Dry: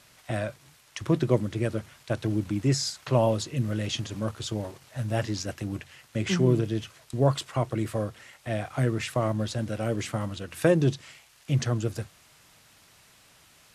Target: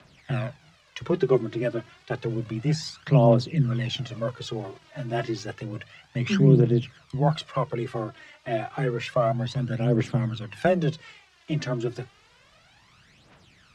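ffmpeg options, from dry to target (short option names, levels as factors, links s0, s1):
-af "lowpass=4100,aphaser=in_gain=1:out_gain=1:delay=3.5:decay=0.63:speed=0.3:type=triangular,afreqshift=19"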